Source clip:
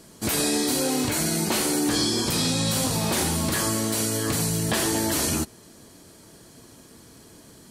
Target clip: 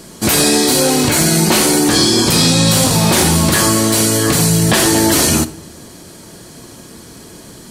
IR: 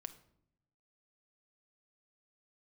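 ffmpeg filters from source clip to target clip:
-filter_complex "[0:a]equalizer=f=14000:w=0.33:g=-7,asoftclip=type=tanh:threshold=0.168,asplit=2[s0][s1];[1:a]atrim=start_sample=2205,highshelf=f=4400:g=9.5[s2];[s1][s2]afir=irnorm=-1:irlink=0,volume=2.11[s3];[s0][s3]amix=inputs=2:normalize=0,volume=1.88"

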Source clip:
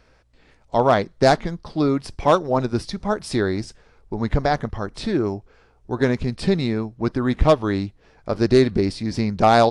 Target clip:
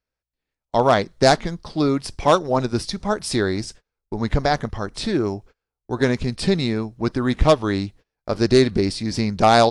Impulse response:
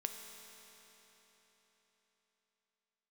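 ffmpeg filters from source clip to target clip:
-af "agate=range=0.0282:threshold=0.00794:ratio=16:detection=peak,highshelf=f=3400:g=8"

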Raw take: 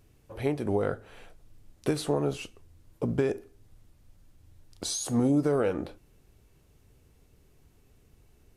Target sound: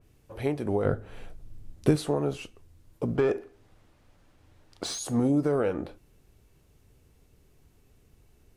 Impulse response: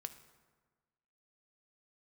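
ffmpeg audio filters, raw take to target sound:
-filter_complex "[0:a]asettb=1/sr,asplit=3[s0][s1][s2];[s0]atrim=end=0.854[s3];[s1]atrim=start=0.85:end=1.96,asetpts=PTS-STARTPTS,afade=t=in:d=0.004:c=qsin,afade=t=out:st=1.106:d=0.004:c=qsin,lowshelf=f=330:g=10.5[s4];[s2]atrim=start=1.956[s5];[s3][s4]acrossfade=d=0.004:c1=hsin:c2=qsin[s6];[s6][s5]acrossfade=d=0.004:c1=qsin:c2=hsin,asettb=1/sr,asplit=3[s7][s8][s9];[s7]atrim=end=3.154[s10];[s8]atrim=start=3.15:end=4.99,asetpts=PTS-STARTPTS,afade=t=in:d=0.004:c=qsin,afade=t=out:st=1.836:d=0.004:c=qsin,asplit=2[s11][s12];[s12]highpass=f=720:p=1,volume=7.08,asoftclip=type=tanh:threshold=0.188[s13];[s11][s13]amix=inputs=2:normalize=0,lowpass=f=1600:p=1,volume=0.501[s14];[s9]atrim=start=4.986[s15];[s10][s14]acrossfade=d=0.004:c1=hsin:c2=qsin[s16];[s16][s15]acrossfade=d=0.004:c1=qsin:c2=hsin,adynamicequalizer=threshold=0.00398:dfrequency=3000:dqfactor=0.7:tfrequency=3000:tqfactor=0.7:attack=5:release=100:ratio=0.375:range=2.5:mode=cutabove:tftype=highshelf"

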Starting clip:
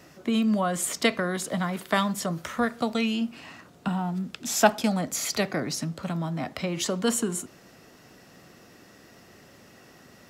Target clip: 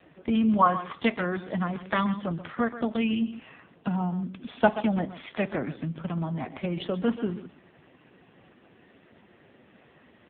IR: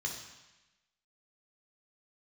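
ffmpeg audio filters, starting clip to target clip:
-filter_complex "[0:a]asplit=3[s0][s1][s2];[s0]afade=t=out:st=0.58:d=0.02[s3];[s1]equalizer=f=1100:t=o:w=0.58:g=14.5,afade=t=in:st=0.58:d=0.02,afade=t=out:st=0.99:d=0.02[s4];[s2]afade=t=in:st=0.99:d=0.02[s5];[s3][s4][s5]amix=inputs=3:normalize=0,asplit=3[s6][s7][s8];[s6]afade=t=out:st=1.8:d=0.02[s9];[s7]bandreject=f=760:w=12,afade=t=in:st=1.8:d=0.02,afade=t=out:st=3.2:d=0.02[s10];[s8]afade=t=in:st=3.2:d=0.02[s11];[s9][s10][s11]amix=inputs=3:normalize=0,aecho=1:1:130:0.237" -ar 8000 -c:a libopencore_amrnb -b:a 5150

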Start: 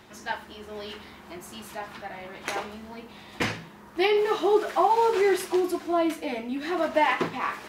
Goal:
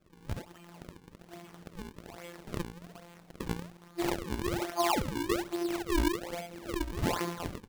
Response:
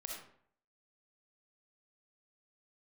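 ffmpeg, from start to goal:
-af "aecho=1:1:18|67:0.631|0.708,afftfilt=real='hypot(re,im)*cos(PI*b)':imag='0':win_size=1024:overlap=0.75,acrusher=samples=39:mix=1:aa=0.000001:lfo=1:lforange=62.4:lforate=1.2,volume=0.473"

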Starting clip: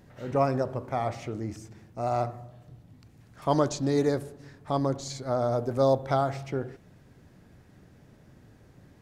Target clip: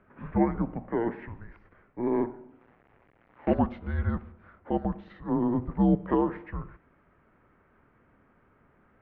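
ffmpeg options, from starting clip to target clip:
-filter_complex "[0:a]asplit=3[s0][s1][s2];[s0]afade=t=out:st=2.59:d=0.02[s3];[s1]acrusher=bits=6:dc=4:mix=0:aa=0.000001,afade=t=in:st=2.59:d=0.02,afade=t=out:st=3.53:d=0.02[s4];[s2]afade=t=in:st=3.53:d=0.02[s5];[s3][s4][s5]amix=inputs=3:normalize=0,highpass=f=450:t=q:w=0.5412,highpass=f=450:t=q:w=1.307,lowpass=f=2600:t=q:w=0.5176,lowpass=f=2600:t=q:w=0.7071,lowpass=f=2600:t=q:w=1.932,afreqshift=-350,volume=1.26"

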